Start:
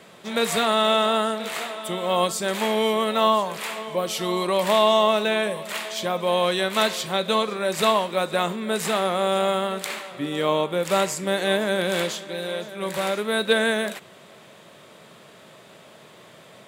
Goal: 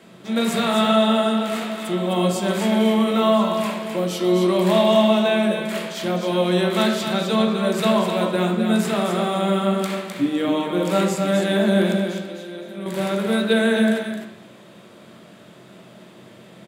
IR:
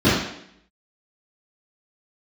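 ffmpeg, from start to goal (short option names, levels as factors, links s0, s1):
-filter_complex "[0:a]asettb=1/sr,asplit=3[s0][s1][s2];[s0]atrim=end=11.924[s3];[s1]atrim=start=11.92:end=12.86,asetpts=PTS-STARTPTS,afade=t=in:d=0.004:c=qsin,afade=t=out:st=0.936:d=0.004:c=qsin,acompressor=threshold=0.02:ratio=6[s4];[s2]atrim=start=12.856[s5];[s3][s4]acrossfade=d=0.004:c1=hsin:c2=qsin[s6];[s6][s5]acrossfade=d=0.004:c1=qsin:c2=hsin,aecho=1:1:258:0.501,asplit=2[s7][s8];[1:a]atrim=start_sample=2205[s9];[s8][s9]afir=irnorm=-1:irlink=0,volume=0.0668[s10];[s7][s10]amix=inputs=2:normalize=0,volume=0.668"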